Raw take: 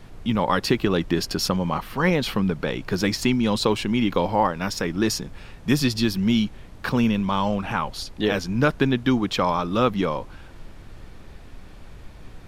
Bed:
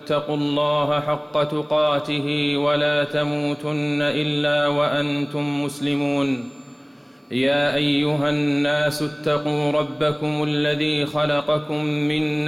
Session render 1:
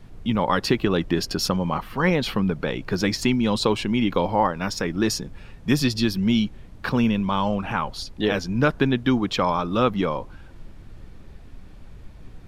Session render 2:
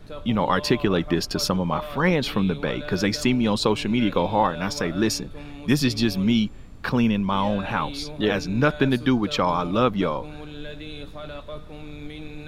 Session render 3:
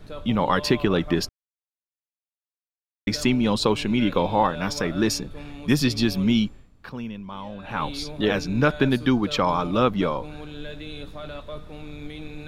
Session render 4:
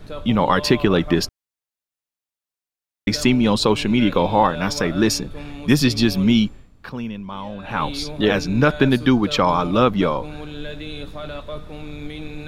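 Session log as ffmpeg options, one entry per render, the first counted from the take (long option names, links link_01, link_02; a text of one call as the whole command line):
ffmpeg -i in.wav -af "afftdn=noise_reduction=6:noise_floor=-43" out.wav
ffmpeg -i in.wav -i bed.wav -filter_complex "[1:a]volume=-16.5dB[link_01];[0:a][link_01]amix=inputs=2:normalize=0" out.wav
ffmpeg -i in.wav -filter_complex "[0:a]asplit=5[link_01][link_02][link_03][link_04][link_05];[link_01]atrim=end=1.29,asetpts=PTS-STARTPTS,afade=type=out:start_time=1.286:duration=0.004:curve=hsin[link_06];[link_02]atrim=start=1.29:end=3.07,asetpts=PTS-STARTPTS,volume=0[link_07];[link_03]atrim=start=3.07:end=6.76,asetpts=PTS-STARTPTS,afade=type=in:duration=0.004:curve=hsin,afade=type=out:start_time=3.38:duration=0.31:curve=qua:silence=0.223872[link_08];[link_04]atrim=start=6.76:end=7.53,asetpts=PTS-STARTPTS,volume=-13dB[link_09];[link_05]atrim=start=7.53,asetpts=PTS-STARTPTS,afade=type=in:duration=0.31:curve=qua:silence=0.223872[link_10];[link_06][link_07][link_08][link_09][link_10]concat=n=5:v=0:a=1" out.wav
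ffmpeg -i in.wav -af "volume=4.5dB,alimiter=limit=-3dB:level=0:latency=1" out.wav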